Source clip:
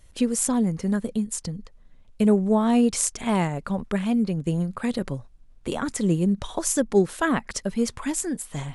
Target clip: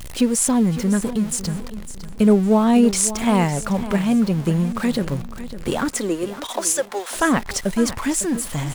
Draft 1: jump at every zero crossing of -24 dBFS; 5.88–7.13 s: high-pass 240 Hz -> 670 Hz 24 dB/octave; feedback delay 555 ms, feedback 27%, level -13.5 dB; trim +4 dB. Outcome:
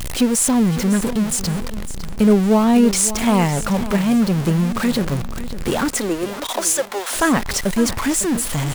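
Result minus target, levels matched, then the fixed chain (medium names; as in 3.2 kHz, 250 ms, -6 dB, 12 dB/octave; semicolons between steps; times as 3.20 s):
jump at every zero crossing: distortion +7 dB
jump at every zero crossing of -33 dBFS; 5.88–7.13 s: high-pass 240 Hz -> 670 Hz 24 dB/octave; feedback delay 555 ms, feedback 27%, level -13.5 dB; trim +4 dB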